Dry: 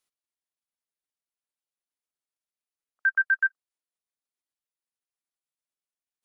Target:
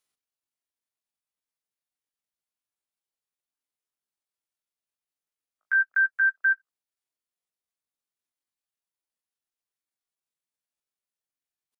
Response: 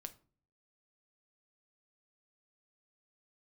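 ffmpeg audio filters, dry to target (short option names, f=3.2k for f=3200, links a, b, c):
-af "atempo=0.53"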